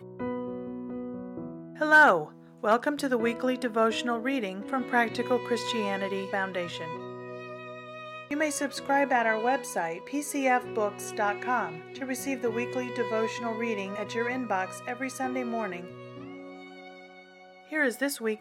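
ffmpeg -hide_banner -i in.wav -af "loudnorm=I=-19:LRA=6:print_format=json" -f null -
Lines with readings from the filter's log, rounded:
"input_i" : "-28.6",
"input_tp" : "-9.5",
"input_lra" : "7.6",
"input_thresh" : "-39.7",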